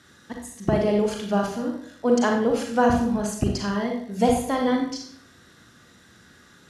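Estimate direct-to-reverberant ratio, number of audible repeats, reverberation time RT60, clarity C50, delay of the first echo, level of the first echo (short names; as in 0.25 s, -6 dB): 1.0 dB, none, 0.65 s, 3.5 dB, none, none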